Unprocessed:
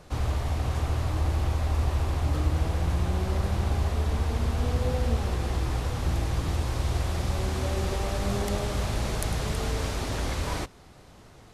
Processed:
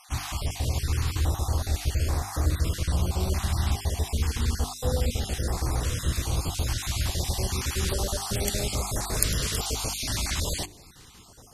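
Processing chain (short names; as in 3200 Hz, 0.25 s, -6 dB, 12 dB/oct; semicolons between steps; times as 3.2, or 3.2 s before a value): random spectral dropouts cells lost 30%; high shelf 3100 Hz +12 dB; notches 50/100/150/200/250/300/350/400 Hz; stepped notch 2.4 Hz 480–3000 Hz; gain +1.5 dB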